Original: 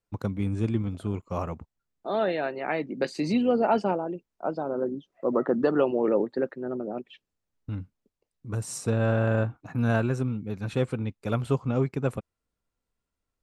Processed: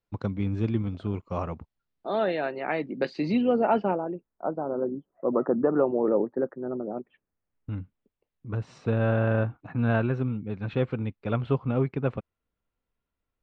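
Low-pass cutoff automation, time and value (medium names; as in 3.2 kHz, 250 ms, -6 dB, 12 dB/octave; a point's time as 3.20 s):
low-pass 24 dB/octave
2.80 s 5 kHz
3.80 s 3.1 kHz
4.49 s 1.4 kHz
6.98 s 1.4 kHz
7.79 s 3.5 kHz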